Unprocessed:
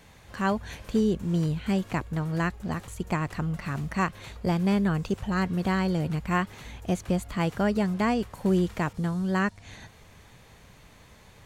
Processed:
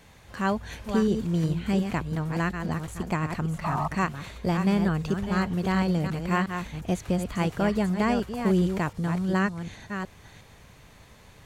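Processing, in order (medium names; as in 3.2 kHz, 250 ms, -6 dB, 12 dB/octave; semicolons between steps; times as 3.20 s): chunks repeated in reverse 359 ms, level -7 dB; painted sound noise, 3.64–3.88 s, 620–1300 Hz -29 dBFS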